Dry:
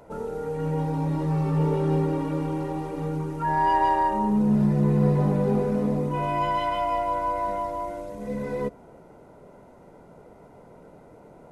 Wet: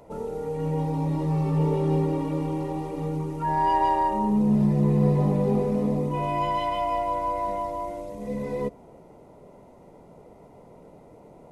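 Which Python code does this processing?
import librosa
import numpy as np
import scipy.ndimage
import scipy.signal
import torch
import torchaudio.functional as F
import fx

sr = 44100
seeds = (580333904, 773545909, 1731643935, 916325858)

y = fx.peak_eq(x, sr, hz=1500.0, db=-12.0, octaves=0.32)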